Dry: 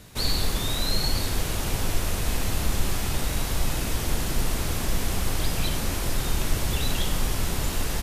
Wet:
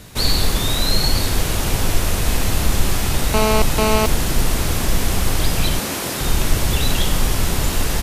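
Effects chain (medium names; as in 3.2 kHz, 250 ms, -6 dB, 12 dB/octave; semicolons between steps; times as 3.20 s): 3.34–4.06 s: mobile phone buzz -25 dBFS; 5.79–6.21 s: high-pass 180 Hz 12 dB/octave; trim +7.5 dB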